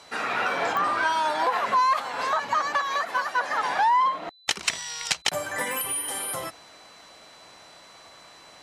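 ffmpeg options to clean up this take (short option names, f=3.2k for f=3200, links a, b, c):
-af "adeclick=t=4,bandreject=f=4k:w=30"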